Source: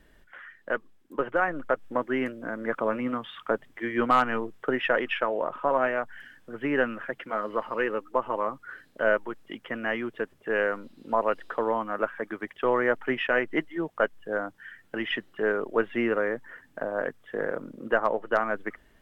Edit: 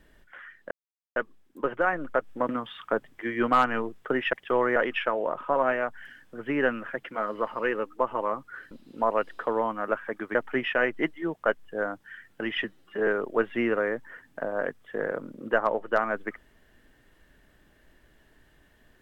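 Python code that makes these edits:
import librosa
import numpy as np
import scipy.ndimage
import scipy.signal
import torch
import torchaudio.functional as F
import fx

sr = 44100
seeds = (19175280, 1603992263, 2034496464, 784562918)

y = fx.edit(x, sr, fx.insert_silence(at_s=0.71, length_s=0.45),
    fx.cut(start_s=2.04, length_s=1.03),
    fx.cut(start_s=8.86, length_s=1.96),
    fx.move(start_s=12.46, length_s=0.43, to_s=4.91),
    fx.stretch_span(start_s=15.18, length_s=0.29, factor=1.5), tone=tone)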